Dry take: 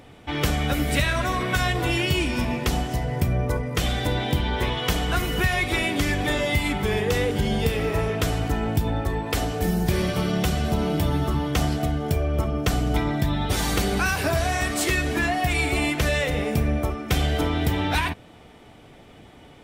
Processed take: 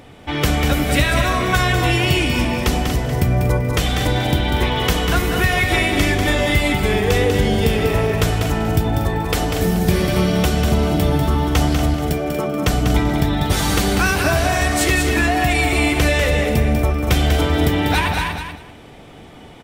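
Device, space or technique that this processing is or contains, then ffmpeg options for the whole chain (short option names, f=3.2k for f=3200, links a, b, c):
ducked delay: -filter_complex "[0:a]asettb=1/sr,asplit=3[a][b][c];[a]atrim=end=11.944[d];[b]atrim=start=11.94:end=12.63,asetpts=PTS-STARTPTS,afade=t=in:d=0.004:c=qsin,afade=t=out:st=0.686:d=0.004:c=qsin,highpass=f=160:w=0.5412,highpass=f=160:w=1.3066[e];[c]atrim=start=12.626[f];[d][e]acrossfade=d=0.004:c1=hsin:c2=qsin[g];[g][f]acrossfade=d=0.004:c1=qsin:c2=hsin,asplit=3[h][i][j];[i]adelay=237,volume=-5dB[k];[j]apad=whole_len=876379[l];[k][l]sidechaincompress=threshold=-30dB:ratio=8:attack=16:release=109[m];[h][m]amix=inputs=2:normalize=0,aecho=1:1:194|388|582:0.501|0.0952|0.0181,volume=5dB"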